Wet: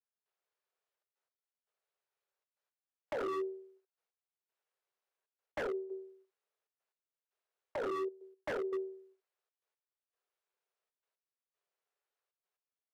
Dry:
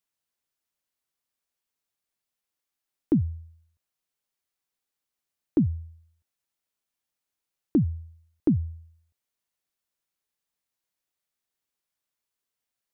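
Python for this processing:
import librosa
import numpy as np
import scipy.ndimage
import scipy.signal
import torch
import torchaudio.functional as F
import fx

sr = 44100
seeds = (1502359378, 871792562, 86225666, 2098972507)

y = fx.lower_of_two(x, sr, delay_ms=0.83)
y = fx.lowpass(y, sr, hz=1000.0, slope=6)
y = fx.room_early_taps(y, sr, ms=(24, 73), db=(-3.5, -8.0))
y = fx.step_gate(y, sr, bpm=117, pattern='..xxxxxx.x.', floor_db=-12.0, edge_ms=4.5)
y = y * np.sin(2.0 * np.pi * 300.0 * np.arange(len(y)) / sr)
y = fx.over_compress(y, sr, threshold_db=-30.0, ratio=-1.0)
y = scipy.signal.sosfilt(scipy.signal.butter(16, 370.0, 'highpass', fs=sr, output='sos'), y)
y = 10.0 ** (-35.0 / 20.0) * (np.abs((y / 10.0 ** (-35.0 / 20.0) + 3.0) % 4.0 - 2.0) - 1.0)
y = F.gain(torch.from_numpy(y), 4.0).numpy()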